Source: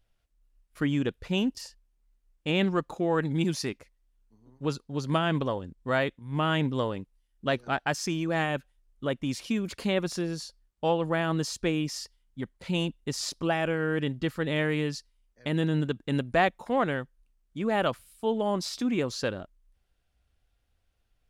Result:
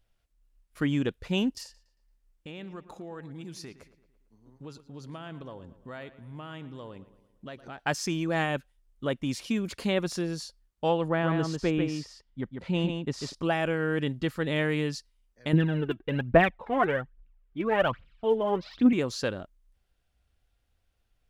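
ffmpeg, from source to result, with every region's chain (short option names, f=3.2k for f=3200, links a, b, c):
-filter_complex "[0:a]asettb=1/sr,asplit=3[a][b][c];[a]atrim=end=1.634[d];[b]atrim=start=1.63:end=7.79,asetpts=PTS-STARTPTS,afade=t=in:d=0.004:c=qsin,afade=t=out:st=6.156:d=0.004:c=qsin,acompressor=threshold=-43dB:ratio=3:attack=3.2:release=140:knee=1:detection=peak,asplit=2[e][f];[f]adelay=113,lowpass=f=3.8k:p=1,volume=-15dB,asplit=2[g][h];[h]adelay=113,lowpass=f=3.8k:p=1,volume=0.53,asplit=2[i][j];[j]adelay=113,lowpass=f=3.8k:p=1,volume=0.53,asplit=2[k][l];[l]adelay=113,lowpass=f=3.8k:p=1,volume=0.53,asplit=2[m][n];[n]adelay=113,lowpass=f=3.8k:p=1,volume=0.53[o];[e][g][i][k][m][o]amix=inputs=6:normalize=0,atrim=end_sample=271656[p];[c]atrim=start=7.786[q];[d][p]acrossfade=d=0.004:c1=hsin:c2=qsin[r];[r][q]acrossfade=d=0.004:c1=qsin:c2=hsin,asettb=1/sr,asplit=3[s][t][u];[s]atrim=end=11.084[v];[t]atrim=start=11.08:end=13.35,asetpts=PTS-STARTPTS,afade=t=in:d=0.004:c=qsin,afade=t=out:st=2.266:d=0.004:c=qsin,aemphasis=mode=reproduction:type=75fm,aecho=1:1:145:0.531,atrim=end_sample=100107[w];[u]atrim=start=13.346[x];[v][w]acrossfade=d=0.004:c1=hsin:c2=qsin[y];[y][x]acrossfade=d=0.004:c1=qsin:c2=hsin,asettb=1/sr,asplit=3[z][aa][ab];[z]atrim=end=15.534[ac];[aa]atrim=start=15.53:end=18.93,asetpts=PTS-STARTPTS,afade=t=in:d=0.004:c=qsin,afade=t=out:st=3.396:d=0.004:c=qsin,lowpass=f=2.9k:w=0.5412,lowpass=f=2.9k:w=1.3066,aphaser=in_gain=1:out_gain=1:delay=3.1:decay=0.65:speed=1.2:type=triangular[ad];[ab]atrim=start=18.926[ae];[ac][ad]acrossfade=d=0.004:c1=hsin:c2=qsin[af];[af][ae]acrossfade=d=0.004:c1=qsin:c2=hsin"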